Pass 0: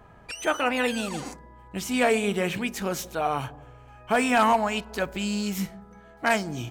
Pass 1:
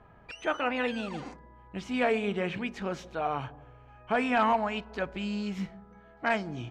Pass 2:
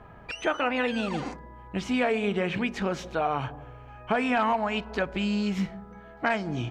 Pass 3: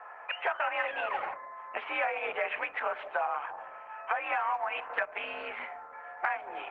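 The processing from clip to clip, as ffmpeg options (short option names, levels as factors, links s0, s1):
-af "lowpass=3300,volume=0.596"
-af "acompressor=threshold=0.0282:ratio=3,volume=2.37"
-af "highpass=f=590:t=q:w=0.5412,highpass=f=590:t=q:w=1.307,lowpass=f=2400:t=q:w=0.5176,lowpass=f=2400:t=q:w=0.7071,lowpass=f=2400:t=q:w=1.932,afreqshift=53,acompressor=threshold=0.02:ratio=8,volume=2.11" -ar 48000 -c:a libopus -b:a 12k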